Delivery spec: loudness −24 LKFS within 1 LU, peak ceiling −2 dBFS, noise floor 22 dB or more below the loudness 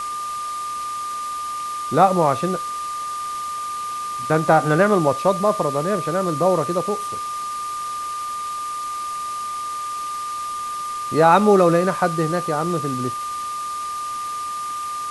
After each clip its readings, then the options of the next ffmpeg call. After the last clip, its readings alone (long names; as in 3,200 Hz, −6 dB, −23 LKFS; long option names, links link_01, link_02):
interfering tone 1,200 Hz; level of the tone −25 dBFS; background noise floor −28 dBFS; target noise floor −44 dBFS; integrated loudness −22.0 LKFS; sample peak −2.0 dBFS; target loudness −24.0 LKFS
→ -af "bandreject=frequency=1200:width=30"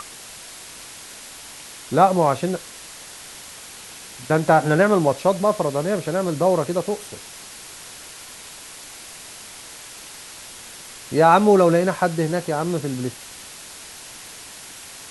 interfering tone none found; background noise floor −40 dBFS; target noise floor −42 dBFS
→ -af "afftdn=noise_reduction=6:noise_floor=-40"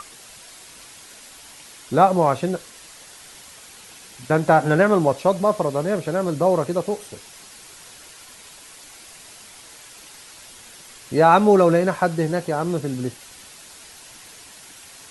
background noise floor −44 dBFS; integrated loudness −19.5 LKFS; sample peak −2.5 dBFS; target loudness −24.0 LKFS
→ -af "volume=-4.5dB"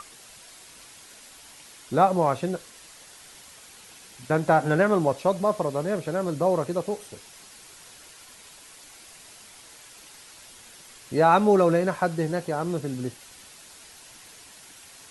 integrated loudness −24.0 LKFS; sample peak −7.0 dBFS; background noise floor −49 dBFS